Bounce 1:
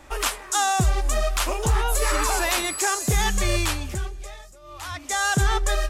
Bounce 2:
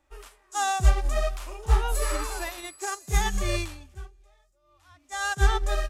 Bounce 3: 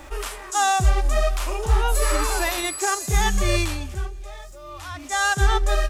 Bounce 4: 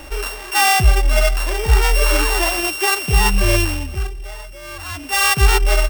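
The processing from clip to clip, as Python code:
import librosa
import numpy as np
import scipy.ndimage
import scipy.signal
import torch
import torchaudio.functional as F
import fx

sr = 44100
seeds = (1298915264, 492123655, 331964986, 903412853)

y1 = fx.hpss(x, sr, part='percussive', gain_db=-12)
y1 = fx.upward_expand(y1, sr, threshold_db=-33.0, expansion=2.5)
y1 = y1 * librosa.db_to_amplitude(4.5)
y2 = fx.env_flatten(y1, sr, amount_pct=50)
y3 = np.r_[np.sort(y2[:len(y2) // 16 * 16].reshape(-1, 16), axis=1).ravel(), y2[len(y2) // 16 * 16:]]
y3 = y3 * librosa.db_to_amplitude(5.5)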